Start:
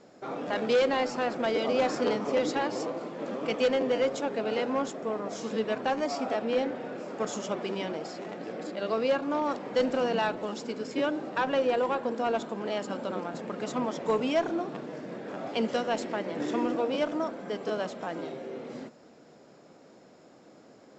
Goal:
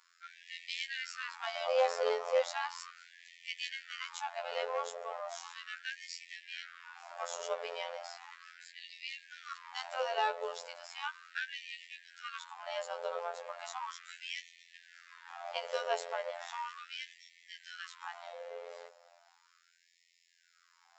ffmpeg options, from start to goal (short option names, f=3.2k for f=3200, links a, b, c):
-af "afftfilt=real='hypot(re,im)*cos(PI*b)':imag='0':win_size=2048:overlap=0.75,afftfilt=real='re*gte(b*sr/1024,400*pow(1800/400,0.5+0.5*sin(2*PI*0.36*pts/sr)))':imag='im*gte(b*sr/1024,400*pow(1800/400,0.5+0.5*sin(2*PI*0.36*pts/sr)))':win_size=1024:overlap=0.75"